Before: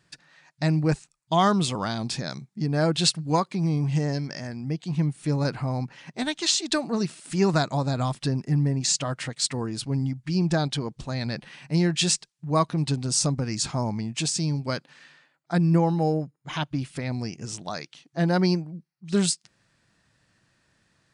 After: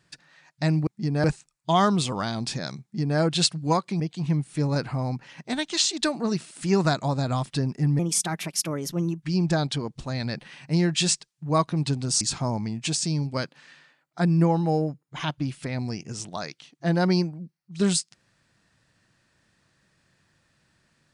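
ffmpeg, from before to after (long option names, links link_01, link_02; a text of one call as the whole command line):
ffmpeg -i in.wav -filter_complex "[0:a]asplit=7[link_01][link_02][link_03][link_04][link_05][link_06][link_07];[link_01]atrim=end=0.872[link_08];[link_02]atrim=start=2.448:end=2.822[link_09];[link_03]atrim=start=0.868:end=3.632[link_10];[link_04]atrim=start=4.688:end=8.684[link_11];[link_05]atrim=start=8.68:end=10.23,asetpts=PTS-STARTPTS,asetrate=55566,aresample=44100[link_12];[link_06]atrim=start=10.226:end=13.222[link_13];[link_07]atrim=start=13.538[link_14];[link_08][link_09]acrossfade=duration=0.004:curve1=hsin:curve2=hsin[link_15];[link_15][link_10]acrossfade=duration=0.004:curve1=hsin:curve2=hsin[link_16];[link_16][link_11]acrossfade=duration=0.004:curve1=hsin:curve2=hsin[link_17];[link_17][link_12]acrossfade=duration=0.004:curve1=hsin:curve2=hsin[link_18];[link_18][link_13]acrossfade=duration=0.004:curve1=hsin:curve2=hsin[link_19];[link_19][link_14]acrossfade=duration=0.004:curve1=hsin:curve2=hsin" out.wav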